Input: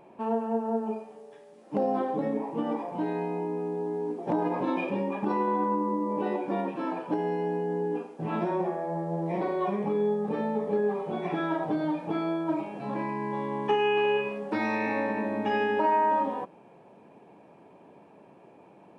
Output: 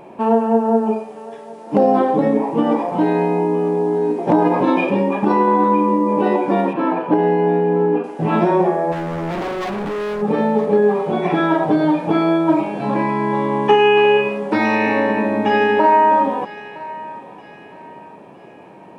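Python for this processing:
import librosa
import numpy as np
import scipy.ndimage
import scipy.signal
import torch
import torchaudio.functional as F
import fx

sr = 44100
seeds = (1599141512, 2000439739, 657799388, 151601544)

p1 = fx.lowpass(x, sr, hz=2800.0, slope=12, at=(6.73, 8.04))
p2 = fx.rider(p1, sr, range_db=10, speed_s=2.0)
p3 = p1 + (p2 * librosa.db_to_amplitude(2.5))
p4 = fx.clip_hard(p3, sr, threshold_db=-27.0, at=(8.91, 10.21), fade=0.02)
p5 = fx.echo_thinned(p4, sr, ms=962, feedback_pct=43, hz=880.0, wet_db=-15)
y = p5 * librosa.db_to_amplitude(5.0)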